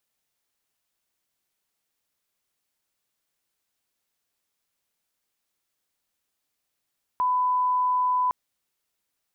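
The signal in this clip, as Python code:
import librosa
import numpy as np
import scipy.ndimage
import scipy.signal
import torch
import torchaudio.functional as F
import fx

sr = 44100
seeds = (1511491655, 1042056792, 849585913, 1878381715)

y = fx.lineup_tone(sr, length_s=1.11, level_db=-20.0)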